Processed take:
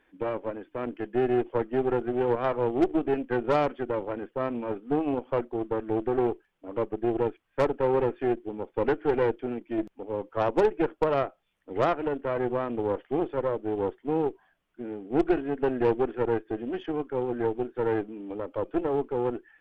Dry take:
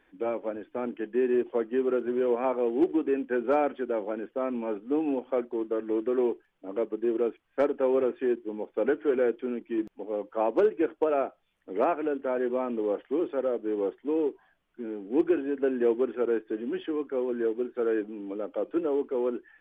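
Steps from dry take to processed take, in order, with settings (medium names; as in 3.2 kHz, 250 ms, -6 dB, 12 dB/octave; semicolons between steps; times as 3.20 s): Chebyshev shaper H 2 -11 dB, 6 -21 dB, 7 -36 dB, 8 -32 dB, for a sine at -14.5 dBFS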